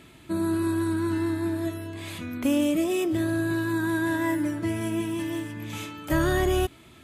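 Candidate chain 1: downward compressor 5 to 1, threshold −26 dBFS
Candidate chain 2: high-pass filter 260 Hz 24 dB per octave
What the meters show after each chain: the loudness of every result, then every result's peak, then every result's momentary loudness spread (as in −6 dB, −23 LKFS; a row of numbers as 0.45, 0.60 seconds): −30.5, −28.0 LKFS; −18.0, −15.0 dBFS; 6, 12 LU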